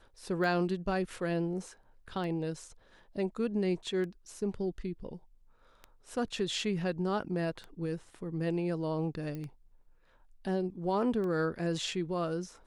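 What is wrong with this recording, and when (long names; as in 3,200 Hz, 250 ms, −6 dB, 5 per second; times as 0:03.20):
scratch tick 33 1/3 rpm
0:09.35: click −28 dBFS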